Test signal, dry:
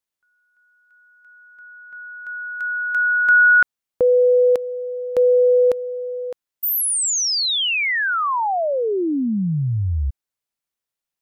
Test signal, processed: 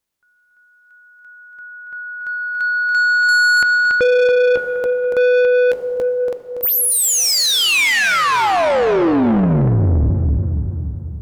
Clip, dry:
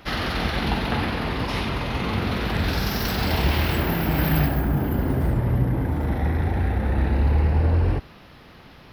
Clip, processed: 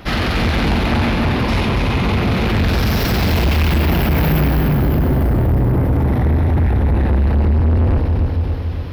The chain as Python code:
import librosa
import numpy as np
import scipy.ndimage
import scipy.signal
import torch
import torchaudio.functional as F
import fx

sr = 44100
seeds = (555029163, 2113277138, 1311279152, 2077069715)

y = fx.low_shelf(x, sr, hz=450.0, db=6.0)
y = fx.echo_feedback(y, sr, ms=283, feedback_pct=53, wet_db=-7.0)
y = fx.rev_plate(y, sr, seeds[0], rt60_s=3.0, hf_ratio=0.65, predelay_ms=0, drr_db=9.5)
y = fx.dynamic_eq(y, sr, hz=2400.0, q=4.3, threshold_db=-41.0, ratio=4.0, max_db=4)
y = 10.0 ** (-18.0 / 20.0) * np.tanh(y / 10.0 ** (-18.0 / 20.0))
y = y * librosa.db_to_amplitude(6.5)